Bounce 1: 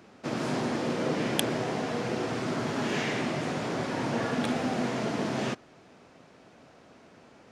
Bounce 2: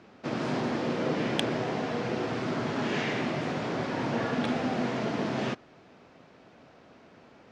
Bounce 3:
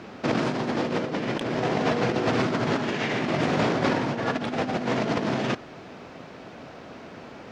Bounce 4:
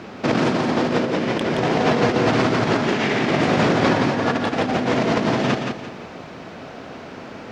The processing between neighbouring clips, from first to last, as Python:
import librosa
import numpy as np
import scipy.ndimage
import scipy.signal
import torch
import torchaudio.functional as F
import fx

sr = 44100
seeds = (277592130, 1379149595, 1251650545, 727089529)

y1 = scipy.signal.sosfilt(scipy.signal.butter(2, 5000.0, 'lowpass', fs=sr, output='sos'), x)
y2 = fx.over_compress(y1, sr, threshold_db=-33.0, ratio=-0.5)
y2 = y2 * 10.0 ** (8.5 / 20.0)
y3 = fx.echo_feedback(y2, sr, ms=172, feedback_pct=33, wet_db=-5)
y3 = y3 * 10.0 ** (5.0 / 20.0)